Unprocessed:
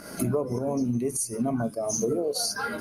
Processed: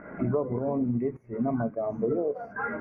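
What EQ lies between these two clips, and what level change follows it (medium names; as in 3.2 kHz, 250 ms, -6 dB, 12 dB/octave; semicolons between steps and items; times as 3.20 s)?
elliptic low-pass 2.1 kHz, stop band 50 dB; 0.0 dB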